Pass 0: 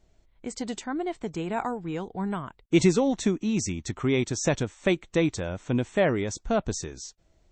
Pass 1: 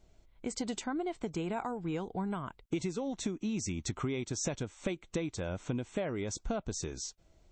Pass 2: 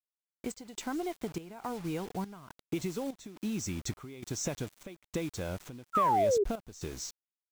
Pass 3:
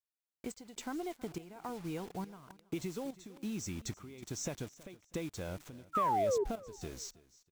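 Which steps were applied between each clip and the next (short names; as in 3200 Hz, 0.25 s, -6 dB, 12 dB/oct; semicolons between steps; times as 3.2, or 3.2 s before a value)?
notch 1800 Hz, Q 11; compressor 12:1, threshold -31 dBFS, peak gain reduction 17 dB
requantised 8-bit, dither none; painted sound fall, 5.93–6.44, 380–1400 Hz -26 dBFS; step gate "xxxxxx...x" 174 bpm -12 dB
feedback echo 0.323 s, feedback 28%, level -20.5 dB; gain -4.5 dB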